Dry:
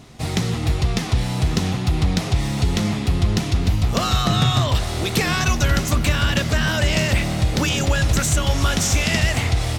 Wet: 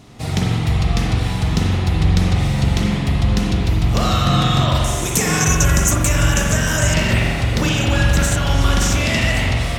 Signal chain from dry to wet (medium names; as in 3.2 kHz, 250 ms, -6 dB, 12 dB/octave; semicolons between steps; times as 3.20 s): 4.84–6.94 s: resonant high shelf 5.3 kHz +8 dB, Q 3; spring tank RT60 1.7 s, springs 44 ms, chirp 45 ms, DRR -2 dB; trim -1 dB